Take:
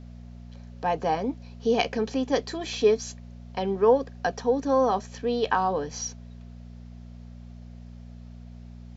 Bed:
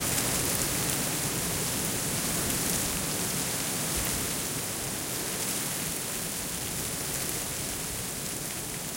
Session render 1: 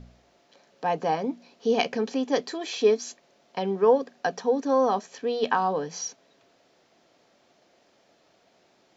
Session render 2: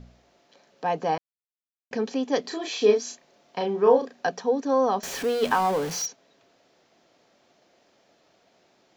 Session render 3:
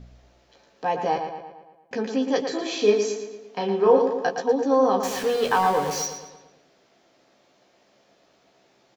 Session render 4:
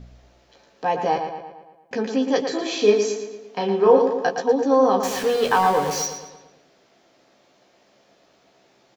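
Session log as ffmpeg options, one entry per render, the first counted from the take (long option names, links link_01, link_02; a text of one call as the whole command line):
ffmpeg -i in.wav -af "bandreject=frequency=60:width_type=h:width=4,bandreject=frequency=120:width_type=h:width=4,bandreject=frequency=180:width_type=h:width=4,bandreject=frequency=240:width_type=h:width=4" out.wav
ffmpeg -i in.wav -filter_complex "[0:a]asettb=1/sr,asplit=3[link_01][link_02][link_03];[link_01]atrim=end=2.414[link_04];[link_02]atrim=start=2.41:end=4.29,asetpts=PTS-STARTPTS,afade=type=in:duration=0.004:curve=qsin,afade=type=out:start_time=1.876:duration=0.004:curve=qsin,asplit=2[link_05][link_06];[link_06]adelay=34,volume=-4dB[link_07];[link_05][link_07]amix=inputs=2:normalize=0,atrim=end_sample=82908[link_08];[link_03]atrim=start=4.286[link_09];[link_04][link_08]acrossfade=duration=0.004:curve1=hsin:curve2=qsin[link_10];[link_10][link_09]acrossfade=duration=0.004:curve1=qsin:curve2=hsin,asettb=1/sr,asplit=3[link_11][link_12][link_13];[link_11]atrim=end=5.034[link_14];[link_12]atrim=start=5.03:end=6.06,asetpts=PTS-STARTPTS,afade=type=in:duration=0.004:curve=qsin,afade=type=out:start_time=1.026:duration=0.004:curve=qsin,aeval=exprs='val(0)+0.5*0.0335*sgn(val(0))':channel_layout=same[link_15];[link_13]atrim=start=6.056[link_16];[link_14][link_15]acrossfade=duration=0.004:curve1=hsin:curve2=qsin[link_17];[link_17][link_16]acrossfade=duration=0.004:curve1=qsin:curve2=hsin,asplit=3[link_18][link_19][link_20];[link_18]atrim=end=1.18,asetpts=PTS-STARTPTS,afade=type=out:start_time=1.176:duration=0.004:curve=hsin[link_21];[link_19]atrim=start=1.18:end=1.91,asetpts=PTS-STARTPTS,volume=0[link_22];[link_20]atrim=start=1.91,asetpts=PTS-STARTPTS,afade=type=in:duration=0.004:curve=hsin[link_23];[link_21][link_22][link_23]concat=n=3:v=0:a=1" out.wav
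ffmpeg -i in.wav -filter_complex "[0:a]asplit=2[link_01][link_02];[link_02]adelay=15,volume=-6dB[link_03];[link_01][link_03]amix=inputs=2:normalize=0,asplit=2[link_04][link_05];[link_05]adelay=114,lowpass=frequency=4900:poles=1,volume=-7dB,asplit=2[link_06][link_07];[link_07]adelay=114,lowpass=frequency=4900:poles=1,volume=0.54,asplit=2[link_08][link_09];[link_09]adelay=114,lowpass=frequency=4900:poles=1,volume=0.54,asplit=2[link_10][link_11];[link_11]adelay=114,lowpass=frequency=4900:poles=1,volume=0.54,asplit=2[link_12][link_13];[link_13]adelay=114,lowpass=frequency=4900:poles=1,volume=0.54,asplit=2[link_14][link_15];[link_15]adelay=114,lowpass=frequency=4900:poles=1,volume=0.54,asplit=2[link_16][link_17];[link_17]adelay=114,lowpass=frequency=4900:poles=1,volume=0.54[link_18];[link_06][link_08][link_10][link_12][link_14][link_16][link_18]amix=inputs=7:normalize=0[link_19];[link_04][link_19]amix=inputs=2:normalize=0" out.wav
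ffmpeg -i in.wav -af "volume=2.5dB" out.wav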